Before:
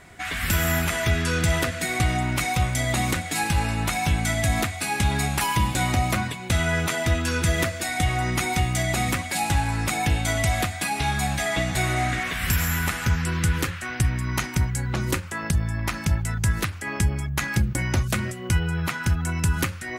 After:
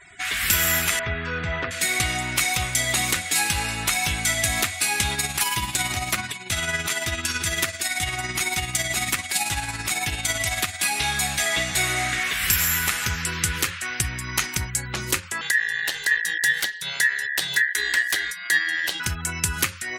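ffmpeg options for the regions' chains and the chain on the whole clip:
-filter_complex "[0:a]asettb=1/sr,asplit=3[a][b][c];[a]atrim=end=0.994[d];[b]atrim=start=0.99:end=1.71,asetpts=PTS-STARTPTS,afade=t=in:d=0.004:c=qsin,afade=t=out:st=0.716:d=0.004:c=qsin,lowpass=1.7k,bandreject=f=340:w=9.8[e];[c]atrim=start=1.706[f];[d][e]acrossfade=d=0.004:c1=hsin:c2=qsin[g];[g][f]acrossfade=d=0.004:c1=qsin:c2=hsin,asettb=1/sr,asplit=3[h][i][j];[h]atrim=end=5.144[k];[i]atrim=start=5.14:end=10.83,asetpts=PTS-STARTPTS,afade=t=in:d=0.004:c=qsin,afade=t=out:st=5.686:d=0.004:c=qsin,bandreject=f=500:w=7.3,tremolo=f=18:d=0.5[l];[j]atrim=start=10.826[m];[k][l]acrossfade=d=0.004:c1=hsin:c2=qsin[n];[n][m]acrossfade=d=0.004:c1=qsin:c2=hsin,asettb=1/sr,asplit=3[o][p][q];[o]atrim=end=15.414[r];[p]atrim=start=15.41:end=19,asetpts=PTS-STARTPTS,afade=t=in:d=0.004:c=qsin,afade=t=out:st=3.586:d=0.004:c=qsin,equalizer=f=520:t=o:w=0.95:g=-4,aeval=exprs='val(0)*sin(2*PI*1800*n/s)':c=same[s];[q]atrim=start=18.996[t];[r][s]acrossfade=d=0.004:c1=hsin:c2=qsin[u];[u][t]acrossfade=d=0.004:c1=qsin:c2=hsin,tiltshelf=f=1.2k:g=-8,afftfilt=real='re*gte(hypot(re,im),0.00447)':imag='im*gte(hypot(re,im),0.00447)':win_size=1024:overlap=0.75,equalizer=f=400:w=3.7:g=5"

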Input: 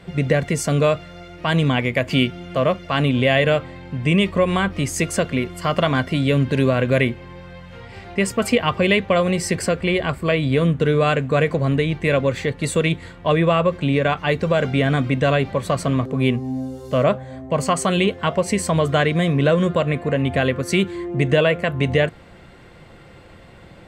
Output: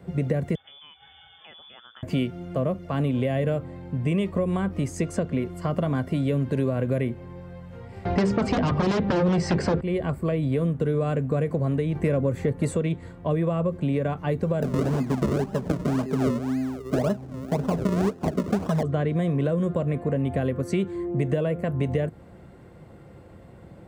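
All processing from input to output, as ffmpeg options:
-filter_complex "[0:a]asettb=1/sr,asplit=3[a][b][c];[a]atrim=end=0.554[d];[b]atrim=start=0.55:end=2.03,asetpts=PTS-STARTPTS,afade=t=in:d=0.004:c=qsin,afade=t=out:st=1.476:d=0.004:c=qsin,acompressor=threshold=-32dB:ratio=8:attack=3.2:release=140:knee=1:detection=peak,lowpass=f=3.1k:t=q:w=0.5098,lowpass=f=3.1k:t=q:w=0.6013,lowpass=f=3.1k:t=q:w=0.9,lowpass=f=3.1k:t=q:w=2.563,afreqshift=-3600[e];[c]atrim=start=2.026[f];[d][e]acrossfade=d=0.004:c1=hsin:c2=qsin[g];[g][f]acrossfade=d=0.004:c1=qsin:c2=hsin,asettb=1/sr,asplit=3[h][i][j];[h]atrim=end=8.054[k];[i]atrim=start=8.05:end=9.81,asetpts=PTS-STARTPTS,afade=t=in:d=0.004:c=qsin,afade=t=out:st=1.756:d=0.004:c=qsin,bandreject=f=50:t=h:w=6,bandreject=f=100:t=h:w=6,bandreject=f=150:t=h:w=6,bandreject=f=200:t=h:w=6,bandreject=f=250:t=h:w=6,bandreject=f=300:t=h:w=6,bandreject=f=350:t=h:w=6,bandreject=f=400:t=h:w=6,aeval=exprs='0.562*sin(PI/2*4.47*val(0)/0.562)':c=same,lowpass=f=5.5k:w=0.5412,lowpass=f=5.5k:w=1.3066[l];[j]atrim=start=9.806[m];[k][l]acrossfade=d=0.004:c1=hsin:c2=qsin[n];[n][m]acrossfade=d=0.004:c1=qsin:c2=hsin,asettb=1/sr,asplit=3[o][p][q];[o]atrim=end=11.954[r];[p]atrim=start=11.95:end=12.76,asetpts=PTS-STARTPTS,afade=t=in:d=0.004:c=qsin,afade=t=out:st=0.806:d=0.004:c=qsin,equalizer=f=4k:t=o:w=1.4:g=-5,acontrast=58[s];[q]atrim=start=12.756[t];[r][s]acrossfade=d=0.004:c1=hsin:c2=qsin[u];[u][t]acrossfade=d=0.004:c1=qsin:c2=hsin,asettb=1/sr,asplit=3[v][w][x];[v]atrim=end=14.624[y];[w]atrim=start=14.62:end=18.83,asetpts=PTS-STARTPTS,afade=t=in:d=0.004:c=qsin,afade=t=out:st=4.206:d=0.004:c=qsin,aecho=1:1:4.8:0.78,atrim=end_sample=185661,acrusher=samples=38:mix=1:aa=0.000001:lfo=1:lforange=38:lforate=1.9[z];[x]atrim=start=18.826[aa];[y][z]acrossfade=d=0.004:c1=hsin:c2=qsin[ab];[ab][aa]acrossfade=d=0.004:c1=qsin:c2=hsin,highpass=58,equalizer=f=3.3k:w=0.39:g=-15,acrossover=split=430|7900[ac][ad][ae];[ac]acompressor=threshold=-23dB:ratio=4[af];[ad]acompressor=threshold=-29dB:ratio=4[ag];[ae]acompressor=threshold=-60dB:ratio=4[ah];[af][ag][ah]amix=inputs=3:normalize=0"

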